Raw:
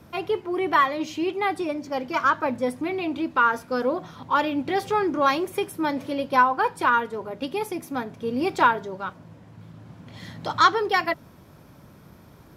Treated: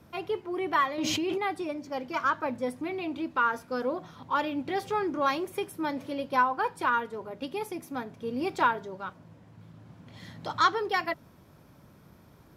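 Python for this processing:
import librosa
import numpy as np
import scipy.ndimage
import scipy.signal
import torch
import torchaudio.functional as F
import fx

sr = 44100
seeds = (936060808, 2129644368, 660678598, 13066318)

y = fx.env_flatten(x, sr, amount_pct=100, at=(0.98, 1.38))
y = y * 10.0 ** (-6.0 / 20.0)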